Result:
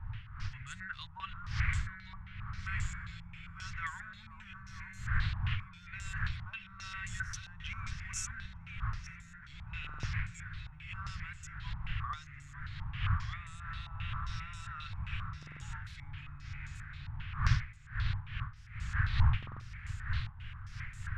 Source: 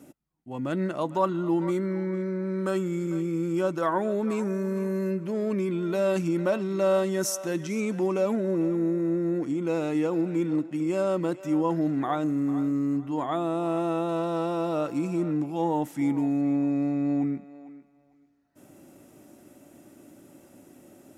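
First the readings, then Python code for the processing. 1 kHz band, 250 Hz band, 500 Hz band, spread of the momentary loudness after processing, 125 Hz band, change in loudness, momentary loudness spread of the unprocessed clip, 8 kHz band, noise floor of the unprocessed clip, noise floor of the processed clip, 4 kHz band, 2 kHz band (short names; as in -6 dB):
-12.5 dB, -28.0 dB, under -40 dB, 13 LU, -2.5 dB, -12.5 dB, 4 LU, -7.5 dB, -59 dBFS, -52 dBFS, -1.0 dB, +1.0 dB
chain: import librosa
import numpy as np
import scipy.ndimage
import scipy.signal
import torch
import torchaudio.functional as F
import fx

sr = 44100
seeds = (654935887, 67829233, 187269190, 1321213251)

y = fx.dmg_wind(x, sr, seeds[0], corner_hz=420.0, level_db=-24.0)
y = 10.0 ** (-5.0 / 20.0) * np.tanh(y / 10.0 ** (-5.0 / 20.0))
y = fx.echo_feedback(y, sr, ms=902, feedback_pct=29, wet_db=-10.5)
y = fx.rider(y, sr, range_db=4, speed_s=2.0)
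y = scipy.signal.sosfilt(scipy.signal.cheby1(3, 1.0, [110.0, 1600.0], 'bandstop', fs=sr, output='sos'), y)
y = fx.dynamic_eq(y, sr, hz=1100.0, q=7.3, threshold_db=-58.0, ratio=4.0, max_db=5)
y = fx.buffer_glitch(y, sr, at_s=(9.8, 15.38, 19.38), block=2048, repeats=4)
y = fx.filter_held_lowpass(y, sr, hz=7.5, low_hz=880.0, high_hz=7300.0)
y = y * librosa.db_to_amplitude(-8.0)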